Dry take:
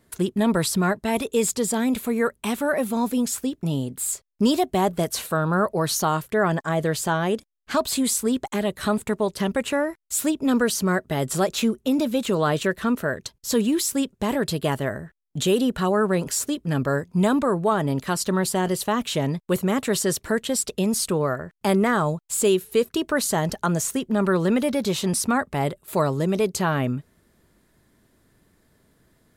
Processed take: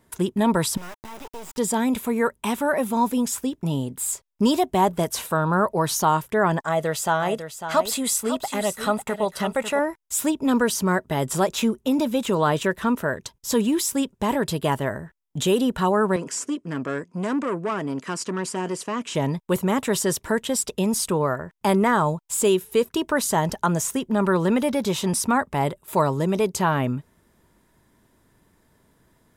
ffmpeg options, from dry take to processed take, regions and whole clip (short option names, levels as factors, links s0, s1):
-filter_complex "[0:a]asettb=1/sr,asplit=3[s0][s1][s2];[s0]atrim=end=0.774[s3];[s1]atrim=start=0.77:end=1.58,asetpts=PTS-STARTPTS,afade=t=in:d=0.004:c=qsin,afade=t=out:st=0.806:d=0.004:c=qsin,highshelf=f=4300:g=-10,acompressor=threshold=0.0251:ratio=4:attack=3.2:release=140:knee=1:detection=peak,acrusher=bits=4:dc=4:mix=0:aa=0.000001[s4];[s2]atrim=start=1.576[s5];[s3][s4]acrossfade=d=0.004:c1=hsin:c2=qsin[s6];[s6][s5]acrossfade=d=0.004:c1=qsin:c2=hsin,asettb=1/sr,asplit=3[s7][s8][s9];[s7]atrim=end=6.644[s10];[s8]atrim=start=6.64:end=9.79,asetpts=PTS-STARTPTS,afade=t=in:d=0.004:c=qsin,afade=t=out:st=3.146:d=0.004:c=qsin,equalizer=f=70:w=0.69:g=-13.5,aecho=1:1:1.5:0.36,atrim=end_sample=138915,aecho=1:1:549:0.316,atrim=end_sample=138915[s11];[s9]atrim=start=9.786[s12];[s10][s11]acrossfade=d=0.004:c1=hsin:c2=qsin[s13];[s13][s12]acrossfade=d=0.004:c1=qsin:c2=hsin,asettb=1/sr,asplit=3[s14][s15][s16];[s14]atrim=end=16.164[s17];[s15]atrim=start=16.16:end=19.15,asetpts=PTS-STARTPTS,afade=t=in:d=0.004:c=qsin,afade=t=out:st=2.986:d=0.004:c=qsin,aeval=exprs='(tanh(10*val(0)+0.2)-tanh(0.2))/10':c=same,highpass=210,equalizer=f=300:t=q:w=4:g=3,equalizer=f=850:t=q:w=4:g=-9,equalizer=f=3700:t=q:w=4:g=-8,lowpass=f=8700:w=0.5412,lowpass=f=8700:w=1.3066,bandreject=f=580:w=13[s18];[s16]atrim=start=19.146[s19];[s17][s18]acrossfade=d=0.004:c1=hsin:c2=qsin[s20];[s20][s19]acrossfade=d=0.004:c1=qsin:c2=hsin,equalizer=f=940:w=5:g=8,bandreject=f=4300:w=11"